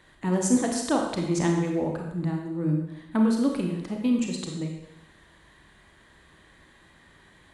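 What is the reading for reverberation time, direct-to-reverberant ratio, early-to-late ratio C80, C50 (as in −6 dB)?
0.85 s, 1.0 dB, 5.5 dB, 3.5 dB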